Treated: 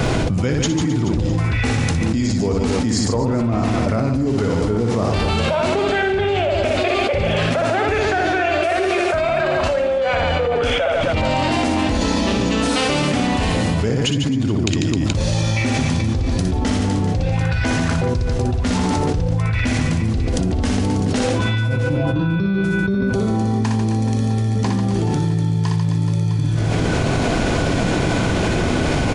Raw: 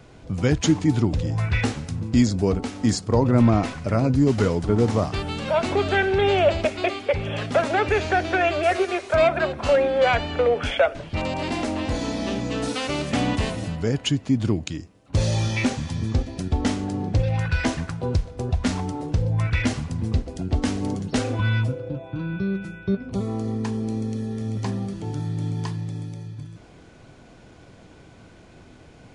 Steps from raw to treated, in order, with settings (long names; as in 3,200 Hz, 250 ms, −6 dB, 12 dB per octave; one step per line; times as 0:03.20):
on a send: reverse bouncing-ball delay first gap 60 ms, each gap 1.4×, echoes 5
on the sum: envelope flattener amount 100%
level −8 dB